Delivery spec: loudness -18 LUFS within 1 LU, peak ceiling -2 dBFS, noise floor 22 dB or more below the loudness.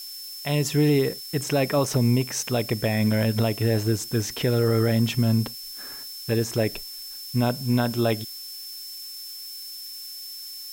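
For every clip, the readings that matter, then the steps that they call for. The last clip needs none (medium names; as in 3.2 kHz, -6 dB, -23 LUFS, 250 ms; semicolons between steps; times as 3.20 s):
steady tone 5.3 kHz; tone level -37 dBFS; noise floor -38 dBFS; noise floor target -47 dBFS; loudness -25.0 LUFS; peak level -12.0 dBFS; loudness target -18.0 LUFS
-> band-stop 5.3 kHz, Q 30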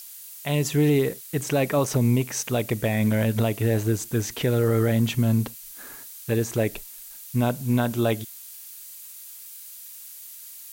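steady tone not found; noise floor -43 dBFS; noise floor target -46 dBFS
-> noise print and reduce 6 dB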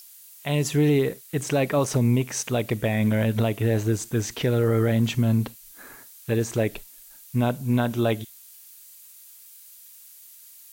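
noise floor -48 dBFS; loudness -24.0 LUFS; peak level -12.5 dBFS; loudness target -18.0 LUFS
-> trim +6 dB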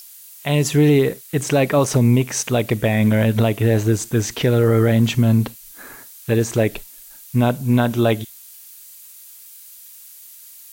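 loudness -18.0 LUFS; peak level -6.5 dBFS; noise floor -42 dBFS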